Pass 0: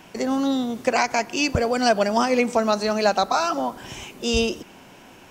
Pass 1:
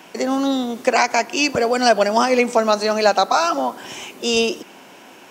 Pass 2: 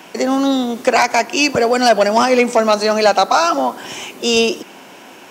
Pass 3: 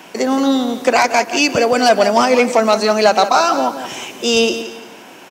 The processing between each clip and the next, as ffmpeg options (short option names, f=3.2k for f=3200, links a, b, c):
-af "highpass=250,volume=4.5dB"
-af "aeval=exprs='0.891*sin(PI/2*1.41*val(0)/0.891)':c=same,highpass=60,volume=-2.5dB"
-af "aecho=1:1:173|346|519:0.266|0.0851|0.0272"